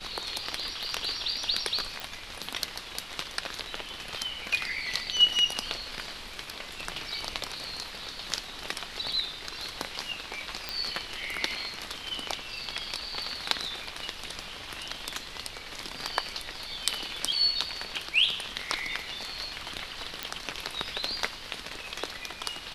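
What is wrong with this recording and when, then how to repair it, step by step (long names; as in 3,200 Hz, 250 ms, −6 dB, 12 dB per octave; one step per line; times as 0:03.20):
0:02.00: click
0:10.69: click
0:20.23: click −13 dBFS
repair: click removal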